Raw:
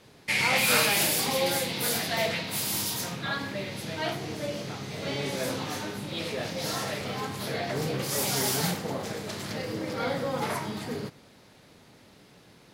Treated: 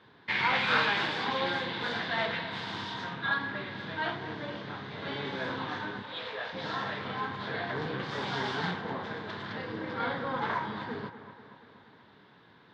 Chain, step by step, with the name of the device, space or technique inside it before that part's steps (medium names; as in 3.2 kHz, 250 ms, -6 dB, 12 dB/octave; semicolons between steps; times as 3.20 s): 6.02–6.53 s: steep high-pass 420 Hz 96 dB/octave; peaking EQ 3.6 kHz +6 dB 0.26 oct; analogue delay pedal into a guitar amplifier (bucket-brigade echo 239 ms, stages 4096, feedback 59%, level -13 dB; valve stage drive 16 dB, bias 0.7; cabinet simulation 88–3600 Hz, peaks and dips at 150 Hz -3 dB, 580 Hz -5 dB, 1 kHz +8 dB, 1.6 kHz +9 dB, 2.5 kHz -5 dB)